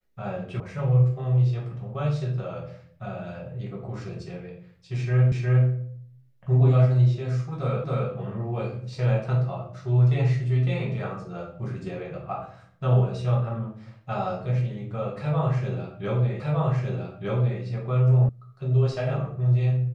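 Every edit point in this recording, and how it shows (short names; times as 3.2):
0.6 sound cut off
5.32 repeat of the last 0.36 s
7.84 repeat of the last 0.27 s
16.4 repeat of the last 1.21 s
18.29 sound cut off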